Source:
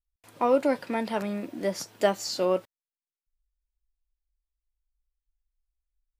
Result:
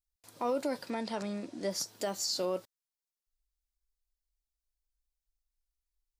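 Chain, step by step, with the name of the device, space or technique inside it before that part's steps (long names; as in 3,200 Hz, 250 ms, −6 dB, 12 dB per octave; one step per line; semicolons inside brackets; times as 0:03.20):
0:00.90–0:01.71: low-pass filter 8,800 Hz 24 dB per octave
over-bright horn tweeter (high shelf with overshoot 3,500 Hz +6.5 dB, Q 1.5; brickwall limiter −18 dBFS, peak gain reduction 9 dB)
level −5.5 dB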